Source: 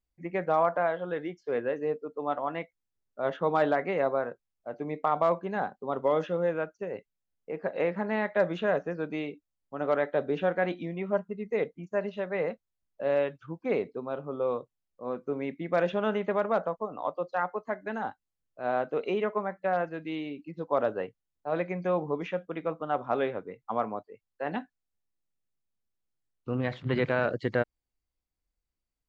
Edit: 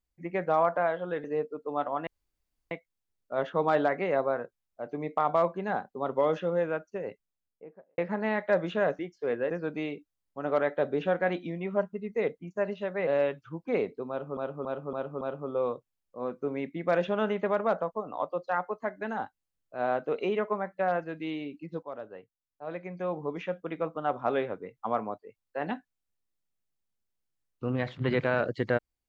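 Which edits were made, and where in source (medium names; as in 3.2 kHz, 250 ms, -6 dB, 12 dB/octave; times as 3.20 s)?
1.24–1.75 s: move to 8.86 s
2.58 s: insert room tone 0.64 s
6.92–7.85 s: studio fade out
12.43–13.04 s: delete
14.06–14.34 s: loop, 5 plays
20.68–22.48 s: fade in quadratic, from -13.5 dB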